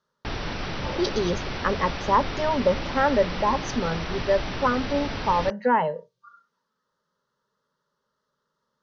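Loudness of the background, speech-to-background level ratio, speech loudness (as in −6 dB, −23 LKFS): −32.0 LKFS, 7.0 dB, −25.0 LKFS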